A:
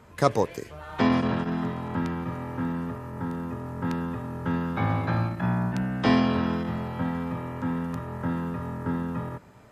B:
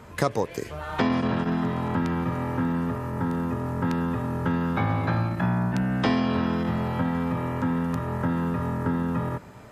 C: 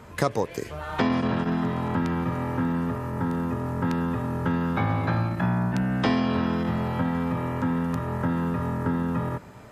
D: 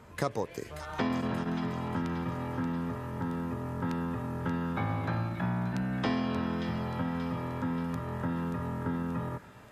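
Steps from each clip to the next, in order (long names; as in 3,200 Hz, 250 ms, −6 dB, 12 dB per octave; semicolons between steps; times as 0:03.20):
downward compressor 3 to 1, threshold −29 dBFS, peak gain reduction 11.5 dB; level +6.5 dB
no processing that can be heard
delay with a high-pass on its return 581 ms, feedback 52%, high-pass 2,300 Hz, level −6.5 dB; level −7 dB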